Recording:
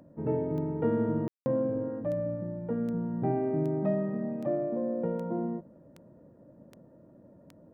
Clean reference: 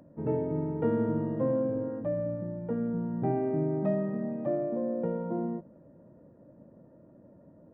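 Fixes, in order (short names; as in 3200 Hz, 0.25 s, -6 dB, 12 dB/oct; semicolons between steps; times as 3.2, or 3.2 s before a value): de-click; room tone fill 1.28–1.46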